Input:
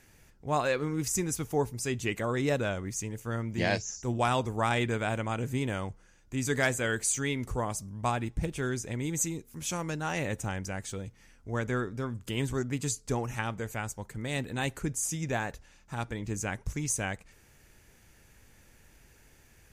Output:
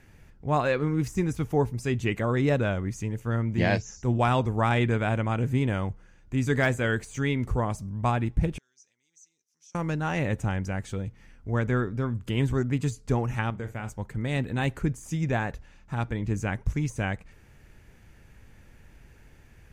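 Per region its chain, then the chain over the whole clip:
0:08.58–0:09.75: downward compressor 5 to 1, threshold −38 dBFS + resonant band-pass 5,800 Hz, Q 7.3
0:13.50–0:13.90: downward expander −37 dBFS + downward compressor 2.5 to 1, threshold −36 dBFS + flutter between parallel walls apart 7.2 metres, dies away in 0.24 s
whole clip: de-essing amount 65%; bass and treble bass +5 dB, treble −10 dB; level +3 dB

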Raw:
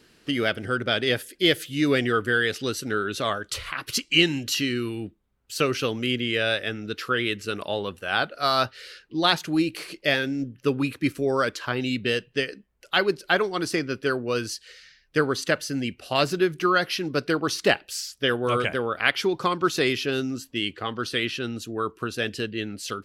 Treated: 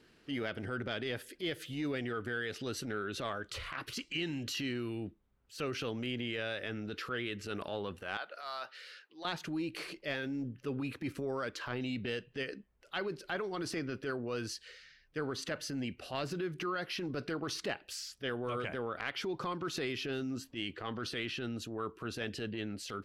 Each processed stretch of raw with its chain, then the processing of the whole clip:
0:08.17–0:09.25: high-pass filter 660 Hz + downward compressor 2 to 1, threshold −37 dBFS
whole clip: high-shelf EQ 5,000 Hz −10 dB; transient designer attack −9 dB, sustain +4 dB; downward compressor, threshold −28 dBFS; level −5.5 dB

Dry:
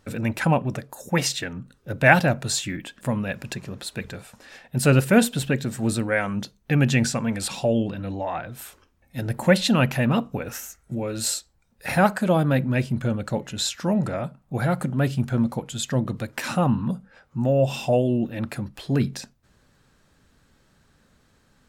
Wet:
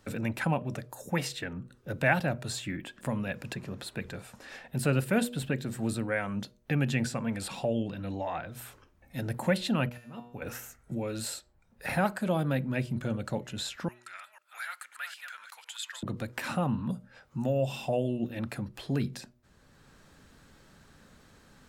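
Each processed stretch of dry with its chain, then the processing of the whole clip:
0:09.89–0:10.42: volume swells 389 ms + tuned comb filter 120 Hz, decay 0.55 s, mix 80%
0:13.88–0:16.03: delay that plays each chunk backwards 252 ms, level −8 dB + high-pass filter 1,500 Hz 24 dB per octave
whole clip: dynamic equaliser 6,100 Hz, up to −5 dB, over −48 dBFS, Q 2.4; hum removal 121.1 Hz, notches 5; multiband upward and downward compressor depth 40%; level −7.5 dB

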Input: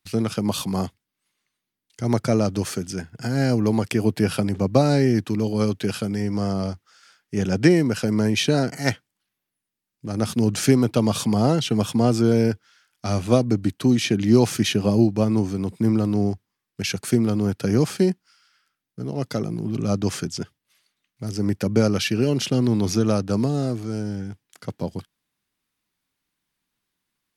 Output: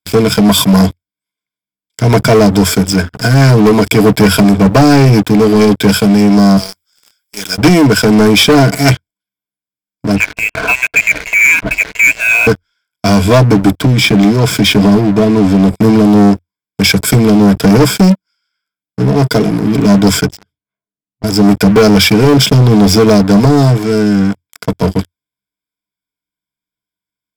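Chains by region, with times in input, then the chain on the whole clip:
0:06.57–0:07.58: first difference + power curve on the samples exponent 0.7
0:10.16–0:12.47: high-pass filter 410 Hz 24 dB per octave + voice inversion scrambler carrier 3,000 Hz
0:13.76–0:15.65: high-shelf EQ 5,100 Hz −8 dB + downward compressor 5 to 1, threshold −18 dBFS
0:20.26–0:21.24: low-pass that shuts in the quiet parts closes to 430 Hz, open at −28.5 dBFS + downward compressor 8 to 1, threshold −41 dBFS
whole clip: EQ curve with evenly spaced ripples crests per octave 1.7, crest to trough 15 dB; leveller curve on the samples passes 5; level −2.5 dB

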